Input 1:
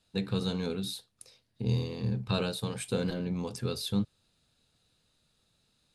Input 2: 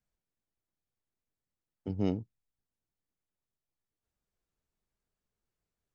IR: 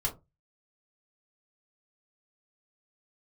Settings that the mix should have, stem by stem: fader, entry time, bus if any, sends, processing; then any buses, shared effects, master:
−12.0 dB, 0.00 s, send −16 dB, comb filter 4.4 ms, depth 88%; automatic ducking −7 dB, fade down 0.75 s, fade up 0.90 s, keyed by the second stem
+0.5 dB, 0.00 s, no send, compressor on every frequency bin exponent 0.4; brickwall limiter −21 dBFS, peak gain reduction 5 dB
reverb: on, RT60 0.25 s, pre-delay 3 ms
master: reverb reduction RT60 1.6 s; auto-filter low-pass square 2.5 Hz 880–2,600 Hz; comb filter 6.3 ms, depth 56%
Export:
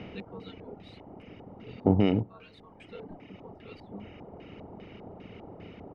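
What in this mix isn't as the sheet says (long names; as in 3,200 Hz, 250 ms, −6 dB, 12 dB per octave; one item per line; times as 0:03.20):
stem 2 +0.5 dB → +10.5 dB
master: missing comb filter 6.3 ms, depth 56%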